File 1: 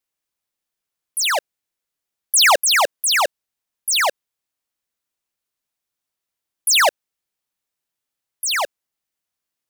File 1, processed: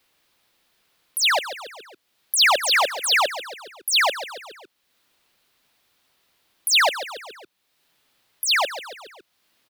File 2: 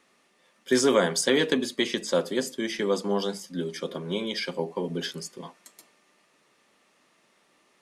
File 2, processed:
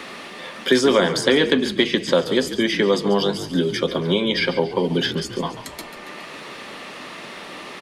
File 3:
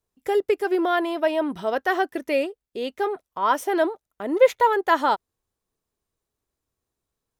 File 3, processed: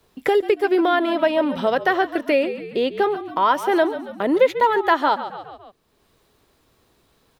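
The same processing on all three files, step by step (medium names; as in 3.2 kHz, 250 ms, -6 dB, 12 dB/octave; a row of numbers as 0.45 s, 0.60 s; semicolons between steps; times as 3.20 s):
resonant high shelf 5.2 kHz -6 dB, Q 1.5; frequency-shifting echo 139 ms, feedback 39%, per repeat -49 Hz, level -14 dB; three bands compressed up and down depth 70%; normalise loudness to -20 LUFS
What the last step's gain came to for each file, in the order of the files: -1.0 dB, +8.0 dB, +3.0 dB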